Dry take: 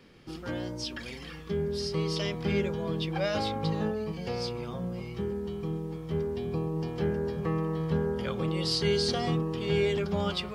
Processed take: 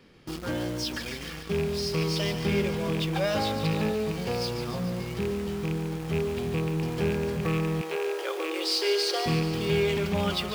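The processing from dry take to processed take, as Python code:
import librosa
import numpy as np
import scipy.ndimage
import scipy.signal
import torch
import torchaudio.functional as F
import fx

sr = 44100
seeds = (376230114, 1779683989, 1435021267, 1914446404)

p1 = fx.rattle_buzz(x, sr, strikes_db=-29.0, level_db=-27.0)
p2 = fx.quant_companded(p1, sr, bits=2)
p3 = p1 + F.gain(torch.from_numpy(p2), -11.5).numpy()
p4 = fx.brickwall_highpass(p3, sr, low_hz=300.0, at=(7.81, 9.26))
y = fx.echo_thinned(p4, sr, ms=145, feedback_pct=67, hz=700.0, wet_db=-9.5)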